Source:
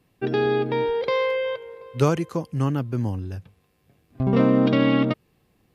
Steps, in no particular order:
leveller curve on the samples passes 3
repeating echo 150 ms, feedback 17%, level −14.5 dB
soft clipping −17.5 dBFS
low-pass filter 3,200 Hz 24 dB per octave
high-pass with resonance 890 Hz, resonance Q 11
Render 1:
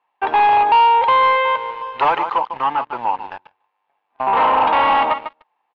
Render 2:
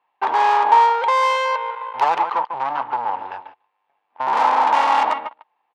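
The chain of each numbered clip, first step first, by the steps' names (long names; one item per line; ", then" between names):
repeating echo, then soft clipping, then high-pass with resonance, then leveller curve on the samples, then low-pass filter
repeating echo, then leveller curve on the samples, then low-pass filter, then soft clipping, then high-pass with resonance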